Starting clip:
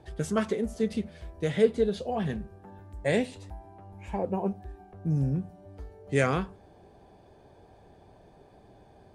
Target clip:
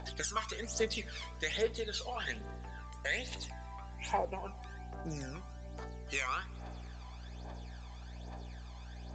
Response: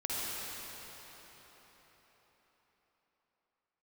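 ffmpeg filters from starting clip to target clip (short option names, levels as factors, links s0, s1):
-filter_complex "[0:a]highpass=910,highshelf=f=3400:g=8,acompressor=threshold=0.00794:ratio=5,aeval=exprs='val(0)+0.001*(sin(2*PI*60*n/s)+sin(2*PI*2*60*n/s)/2+sin(2*PI*3*60*n/s)/3+sin(2*PI*4*60*n/s)/4+sin(2*PI*5*60*n/s)/5)':c=same,aphaser=in_gain=1:out_gain=1:delay=1:decay=0.65:speed=1.2:type=triangular,asplit=2[s0][s1];[1:a]atrim=start_sample=2205,lowshelf=f=68:g=9[s2];[s1][s2]afir=irnorm=-1:irlink=0,volume=0.0355[s3];[s0][s3]amix=inputs=2:normalize=0,volume=2" -ar 16000 -c:a pcm_alaw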